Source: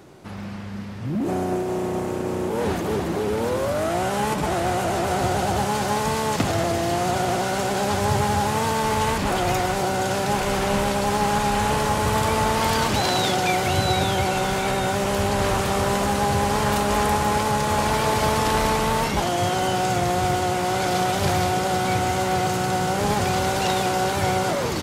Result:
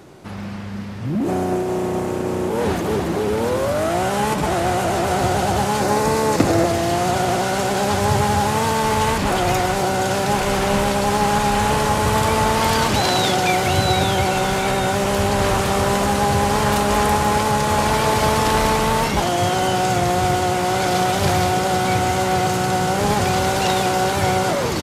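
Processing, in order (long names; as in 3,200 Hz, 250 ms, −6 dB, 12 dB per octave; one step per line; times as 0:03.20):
0:05.80–0:06.66: thirty-one-band graphic EQ 315 Hz +10 dB, 500 Hz +7 dB, 3,150 Hz −7 dB
downsampling to 32,000 Hz
level +3.5 dB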